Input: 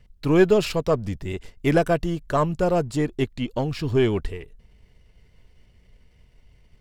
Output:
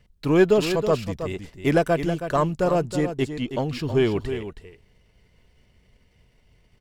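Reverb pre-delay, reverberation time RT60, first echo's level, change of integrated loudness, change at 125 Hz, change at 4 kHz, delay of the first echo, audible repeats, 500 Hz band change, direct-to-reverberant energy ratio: none, none, -9.5 dB, 0.0 dB, -1.0 dB, +0.5 dB, 0.321 s, 1, +0.5 dB, none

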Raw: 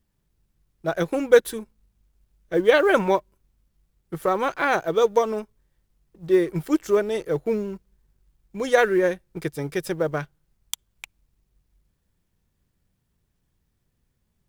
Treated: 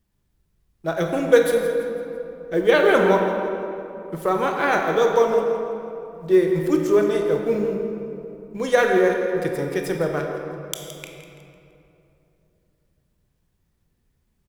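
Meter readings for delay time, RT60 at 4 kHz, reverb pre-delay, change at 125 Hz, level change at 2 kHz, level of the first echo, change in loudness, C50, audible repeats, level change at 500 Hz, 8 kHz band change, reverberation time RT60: 0.167 s, 1.6 s, 18 ms, +3.0 dB, +2.0 dB, -13.0 dB, +1.5 dB, 3.0 dB, 2, +3.0 dB, +1.0 dB, 2.9 s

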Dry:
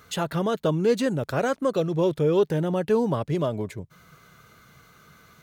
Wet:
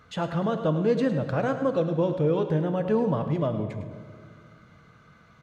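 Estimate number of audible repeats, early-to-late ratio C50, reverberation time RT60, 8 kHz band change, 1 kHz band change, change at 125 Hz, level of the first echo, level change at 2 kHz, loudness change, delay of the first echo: 1, 8.0 dB, 2.1 s, n/a, -1.5 dB, +0.5 dB, -11.5 dB, -3.0 dB, -1.0 dB, 0.105 s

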